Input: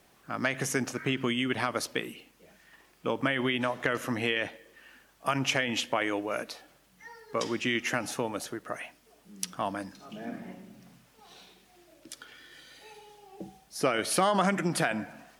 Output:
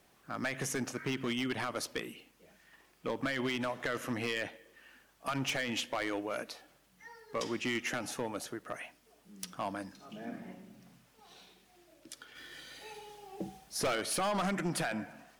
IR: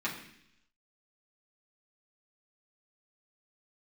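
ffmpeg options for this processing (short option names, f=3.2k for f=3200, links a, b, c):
-filter_complex "[0:a]asplit=3[a][b][c];[a]afade=t=out:st=12.35:d=0.02[d];[b]acontrast=58,afade=t=in:st=12.35:d=0.02,afade=t=out:st=13.94:d=0.02[e];[c]afade=t=in:st=13.94:d=0.02[f];[d][e][f]amix=inputs=3:normalize=0,asoftclip=type=hard:threshold=-24dB,volume=-4dB"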